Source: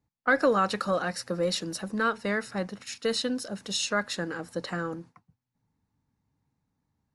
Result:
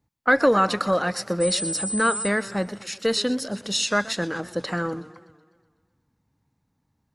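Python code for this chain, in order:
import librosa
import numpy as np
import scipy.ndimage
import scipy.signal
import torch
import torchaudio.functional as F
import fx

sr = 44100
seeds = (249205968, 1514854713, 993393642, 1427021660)

y = fx.dmg_tone(x, sr, hz=8100.0, level_db=-32.0, at=(1.4, 2.27), fade=0.02)
y = fx.echo_warbled(y, sr, ms=124, feedback_pct=59, rate_hz=2.8, cents=156, wet_db=-18.0)
y = y * librosa.db_to_amplitude(5.0)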